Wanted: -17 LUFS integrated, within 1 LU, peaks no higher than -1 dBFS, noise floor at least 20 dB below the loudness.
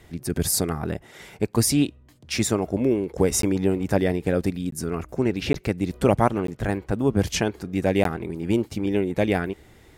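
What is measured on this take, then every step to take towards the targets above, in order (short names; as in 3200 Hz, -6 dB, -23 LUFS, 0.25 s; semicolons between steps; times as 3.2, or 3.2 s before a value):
dropouts 5; longest dropout 13 ms; loudness -24.0 LUFS; peak -5.0 dBFS; loudness target -17.0 LUFS
-> interpolate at 3.42/4.71/5.53/6.47/8.04, 13 ms; gain +7 dB; limiter -1 dBFS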